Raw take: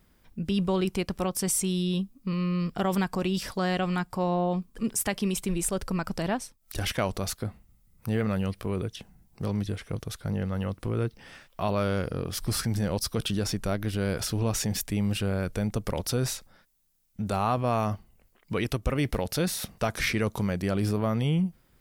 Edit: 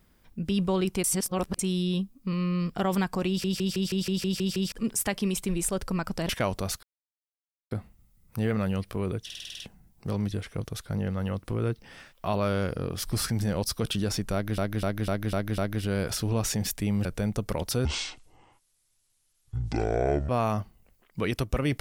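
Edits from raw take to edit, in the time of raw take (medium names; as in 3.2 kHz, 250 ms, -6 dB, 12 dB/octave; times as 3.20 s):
1.04–1.59 s: reverse
3.28 s: stutter in place 0.16 s, 9 plays
6.29–6.87 s: delete
7.41 s: insert silence 0.88 s
8.95 s: stutter 0.05 s, 8 plays
13.68–13.93 s: loop, 6 plays
15.15–15.43 s: delete
16.23–17.62 s: speed 57%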